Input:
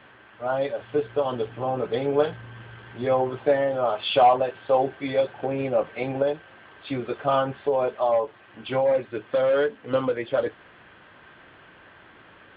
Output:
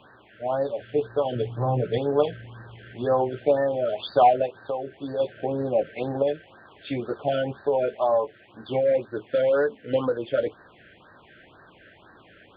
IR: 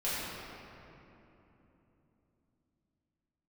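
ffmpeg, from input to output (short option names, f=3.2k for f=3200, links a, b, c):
-filter_complex "[0:a]asettb=1/sr,asplit=3[a][b][c];[a]atrim=end=1.354[d];[b]atrim=start=1.35:end=1.98,asetpts=PTS-STARTPTS,afade=t=in:d=0.004:c=qsin,afade=t=out:st=0.626:d=0.004:c=qsin,equalizer=f=130:w=2.5:g=12[e];[c]atrim=start=1.976[f];[d][e]acrossfade=d=0.004:c1=hsin:c2=qsin[g];[g][f]acrossfade=d=0.004:c1=qsin:c2=hsin,asplit=3[h][i][j];[h]afade=t=out:st=4.46:d=0.02[k];[i]acompressor=threshold=-29dB:ratio=3,afade=t=in:st=4.46:d=0.02,afade=t=out:st=5.19:d=0.02[l];[j]afade=t=in:st=5.19:d=0.02[m];[k][l][m]amix=inputs=3:normalize=0,afftfilt=real='re*(1-between(b*sr/1024,910*pow(2700/910,0.5+0.5*sin(2*PI*2*pts/sr))/1.41,910*pow(2700/910,0.5+0.5*sin(2*PI*2*pts/sr))*1.41))':imag='im*(1-between(b*sr/1024,910*pow(2700/910,0.5+0.5*sin(2*PI*2*pts/sr))/1.41,910*pow(2700/910,0.5+0.5*sin(2*PI*2*pts/sr))*1.41))':win_size=1024:overlap=0.75"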